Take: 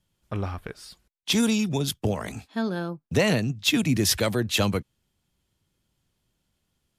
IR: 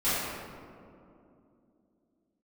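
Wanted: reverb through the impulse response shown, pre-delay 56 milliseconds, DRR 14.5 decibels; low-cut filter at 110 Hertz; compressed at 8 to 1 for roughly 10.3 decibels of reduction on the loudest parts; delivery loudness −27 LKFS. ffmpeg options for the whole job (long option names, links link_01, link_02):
-filter_complex "[0:a]highpass=110,acompressor=threshold=-29dB:ratio=8,asplit=2[link_01][link_02];[1:a]atrim=start_sample=2205,adelay=56[link_03];[link_02][link_03]afir=irnorm=-1:irlink=0,volume=-27.5dB[link_04];[link_01][link_04]amix=inputs=2:normalize=0,volume=7dB"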